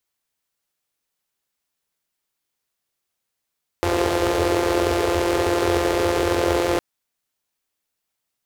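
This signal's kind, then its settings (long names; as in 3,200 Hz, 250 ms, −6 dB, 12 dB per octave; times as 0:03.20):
pulse-train model of a four-cylinder engine, steady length 2.96 s, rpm 5,200, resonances 81/400 Hz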